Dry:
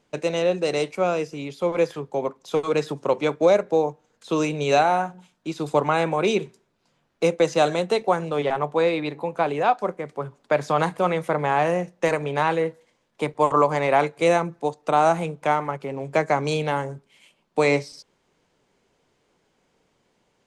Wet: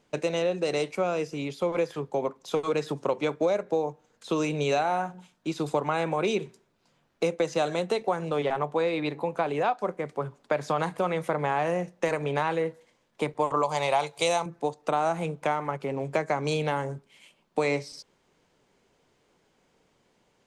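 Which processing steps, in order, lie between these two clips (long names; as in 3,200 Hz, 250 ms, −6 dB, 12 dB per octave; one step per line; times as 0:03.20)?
0:13.63–0:14.46: drawn EQ curve 140 Hz 0 dB, 230 Hz −10 dB, 870 Hz +6 dB, 1,700 Hz −4 dB, 3,400 Hz +11 dB
downward compressor 3 to 1, threshold −24 dBFS, peak gain reduction 10.5 dB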